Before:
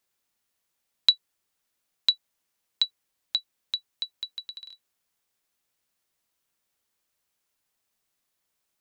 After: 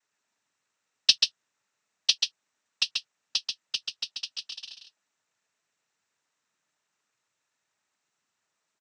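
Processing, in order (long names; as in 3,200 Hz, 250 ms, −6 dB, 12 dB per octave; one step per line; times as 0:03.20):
cochlear-implant simulation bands 12
single-tap delay 136 ms −4.5 dB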